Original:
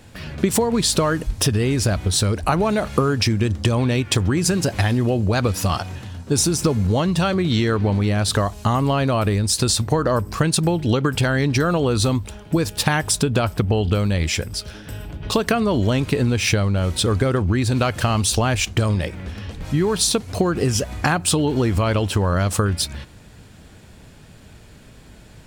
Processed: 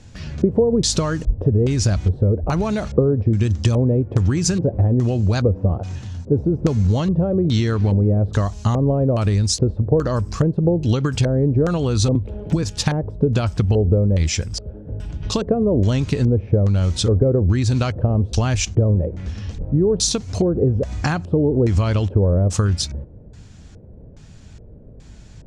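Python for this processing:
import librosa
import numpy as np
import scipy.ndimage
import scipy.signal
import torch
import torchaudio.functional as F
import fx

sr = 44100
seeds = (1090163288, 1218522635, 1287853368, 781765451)

y = fx.filter_lfo_lowpass(x, sr, shape='square', hz=1.2, low_hz=510.0, high_hz=6400.0, q=2.8)
y = fx.low_shelf(y, sr, hz=200.0, db=11.5)
y = fx.band_squash(y, sr, depth_pct=100, at=(12.15, 12.63))
y = y * librosa.db_to_amplitude(-5.5)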